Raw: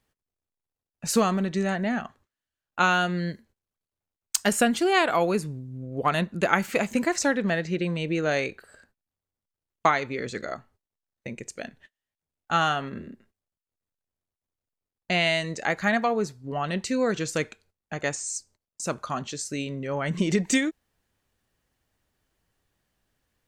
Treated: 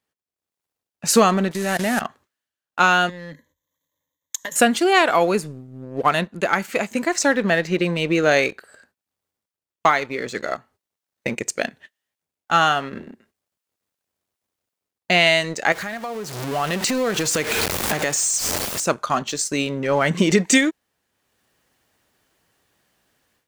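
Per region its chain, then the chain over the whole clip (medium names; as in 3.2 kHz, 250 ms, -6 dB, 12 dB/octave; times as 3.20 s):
1.51–2.01 s: one-bit delta coder 64 kbps, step -33 dBFS + treble shelf 6 kHz +6 dB + level held to a coarse grid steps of 15 dB
3.09–4.56 s: rippled EQ curve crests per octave 1.1, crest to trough 18 dB + compression 10:1, threshold -33 dBFS
15.72–18.86 s: jump at every zero crossing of -28 dBFS + compression 5:1, threshold -34 dBFS
whole clip: high-pass 250 Hz 6 dB/octave; waveshaping leveller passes 1; level rider gain up to 16 dB; trim -3 dB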